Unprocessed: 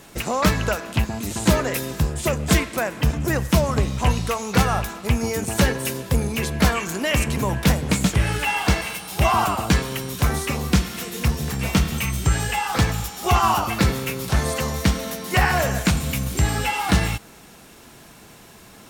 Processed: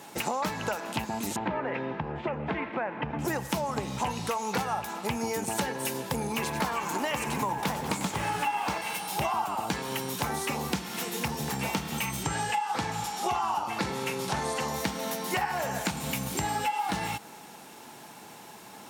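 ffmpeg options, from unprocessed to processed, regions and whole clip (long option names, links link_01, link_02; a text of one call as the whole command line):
ffmpeg -i in.wav -filter_complex "[0:a]asettb=1/sr,asplit=3[link_01][link_02][link_03];[link_01]atrim=end=1.364[link_04];[link_02]atrim=start=1.36:end=3.19,asetpts=PTS-STARTPTS,afade=type=in:duration=0.004:curve=qsin,afade=type=out:start_time=1.826:duration=0.004:curve=qsin,lowpass=frequency=2500:width=0.5412,lowpass=frequency=2500:width=1.3066,acompressor=threshold=-22dB:ratio=2.5:attack=3.2:release=140:knee=1:detection=peak[link_05];[link_03]atrim=start=3.186[link_06];[link_04][link_05]acrossfade=duration=0.004:curve1=hsin:curve2=qsin[link_07];[link_07][link_06]acrossfade=duration=0.004:curve1=qsin:curve2=hsin,asettb=1/sr,asplit=3[link_08][link_09][link_10];[link_08]atrim=end=6.314[link_11];[link_09]atrim=start=6.31:end=8.78,asetpts=PTS-STARTPTS,afade=type=in:duration=0.004:curve=qsin,afade=type=out:start_time=2.466:duration=0.004:curve=qsin,equalizer=frequency=1100:width_type=o:width=0.52:gain=7,acrusher=bits=7:mode=log:mix=0:aa=0.000001,asplit=9[link_12][link_13][link_14][link_15][link_16][link_17][link_18][link_19][link_20];[link_13]adelay=94,afreqshift=-120,volume=-11dB[link_21];[link_14]adelay=188,afreqshift=-240,volume=-15dB[link_22];[link_15]adelay=282,afreqshift=-360,volume=-19dB[link_23];[link_16]adelay=376,afreqshift=-480,volume=-23dB[link_24];[link_17]adelay=470,afreqshift=-600,volume=-27.1dB[link_25];[link_18]adelay=564,afreqshift=-720,volume=-31.1dB[link_26];[link_19]adelay=658,afreqshift=-840,volume=-35.1dB[link_27];[link_20]adelay=752,afreqshift=-960,volume=-39.1dB[link_28];[link_12][link_21][link_22][link_23][link_24][link_25][link_26][link_27][link_28]amix=inputs=9:normalize=0,atrim=end_sample=108927[link_29];[link_10]atrim=start=8.776[link_30];[link_11][link_29]acrossfade=duration=0.004:curve1=hsin:curve2=qsin[link_31];[link_31][link_30]acrossfade=duration=0.004:curve1=qsin:curve2=hsin,asettb=1/sr,asplit=3[link_32][link_33][link_34];[link_32]atrim=end=12.234[link_35];[link_33]atrim=start=12.23:end=14.68,asetpts=PTS-STARTPTS,afade=type=in:duration=0.004:curve=qsin,afade=type=out:start_time=2.446:duration=0.004:curve=qsin,lowpass=10000,asplit=2[link_36][link_37];[link_37]adelay=43,volume=-11dB[link_38];[link_36][link_38]amix=inputs=2:normalize=0,atrim=end_sample=108045[link_39];[link_34]atrim=start=14.676[link_40];[link_35][link_39]acrossfade=duration=0.004:curve1=hsin:curve2=qsin[link_41];[link_41][link_40]acrossfade=duration=0.004:curve1=qsin:curve2=hsin,highpass=170,equalizer=frequency=860:width_type=o:width=0.24:gain=12,acompressor=threshold=-25dB:ratio=6,volume=-2dB" out.wav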